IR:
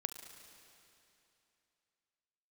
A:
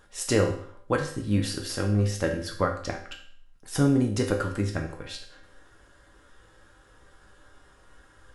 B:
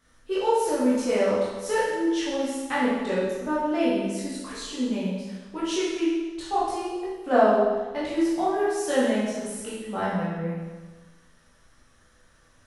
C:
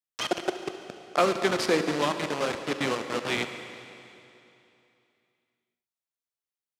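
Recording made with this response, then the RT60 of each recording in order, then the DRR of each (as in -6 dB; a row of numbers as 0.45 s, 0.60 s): C; 0.55 s, 1.3 s, 2.9 s; 1.0 dB, -9.5 dB, 7.5 dB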